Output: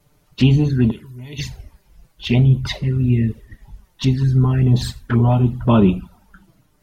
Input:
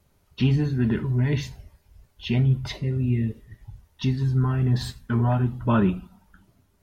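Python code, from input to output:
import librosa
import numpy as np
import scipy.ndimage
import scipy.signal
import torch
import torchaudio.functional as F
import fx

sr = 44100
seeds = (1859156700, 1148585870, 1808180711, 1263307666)

y = fx.hpss(x, sr, part='percussive', gain_db=4)
y = fx.env_flanger(y, sr, rest_ms=6.9, full_db=-18.0)
y = fx.pre_emphasis(y, sr, coefficient=0.9, at=(0.9, 1.38), fade=0.02)
y = y * 10.0 ** (7.0 / 20.0)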